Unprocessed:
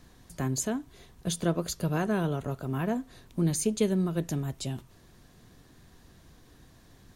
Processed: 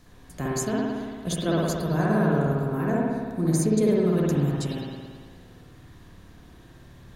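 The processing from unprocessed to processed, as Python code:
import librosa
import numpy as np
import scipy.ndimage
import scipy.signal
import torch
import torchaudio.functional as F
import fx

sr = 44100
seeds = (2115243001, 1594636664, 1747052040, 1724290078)

y = fx.peak_eq(x, sr, hz=3000.0, db=-12.5, octaves=0.52, at=(1.59, 4.07))
y = fx.rev_spring(y, sr, rt60_s=1.7, pass_ms=(56,), chirp_ms=55, drr_db=-5.5)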